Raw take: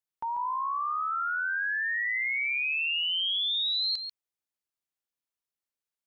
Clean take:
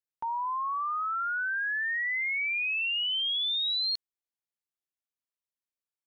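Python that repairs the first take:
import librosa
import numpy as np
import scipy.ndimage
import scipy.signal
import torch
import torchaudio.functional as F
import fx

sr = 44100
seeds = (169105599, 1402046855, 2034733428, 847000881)

y = fx.fix_echo_inverse(x, sr, delay_ms=141, level_db=-8.0)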